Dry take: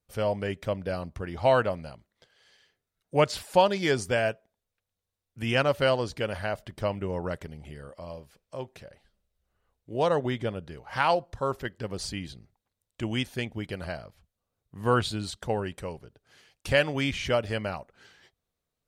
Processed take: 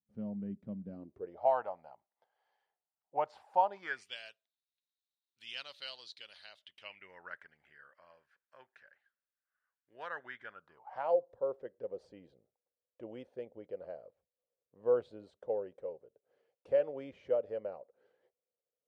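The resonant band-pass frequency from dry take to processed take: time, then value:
resonant band-pass, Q 5.8
0:00.88 210 Hz
0:01.52 820 Hz
0:03.74 820 Hz
0:04.17 3,900 Hz
0:06.51 3,900 Hz
0:07.27 1,600 Hz
0:10.48 1,600 Hz
0:11.15 510 Hz

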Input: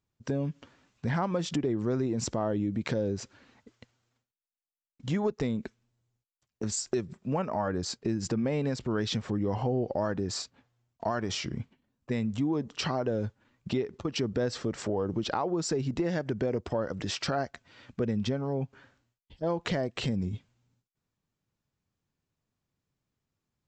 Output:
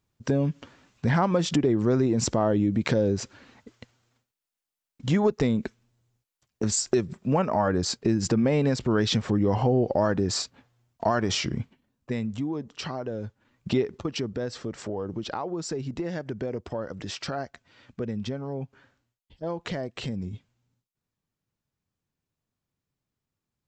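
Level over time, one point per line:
0:11.40 +6.5 dB
0:12.68 −3 dB
0:13.25 −3 dB
0:13.79 +6 dB
0:14.35 −2 dB

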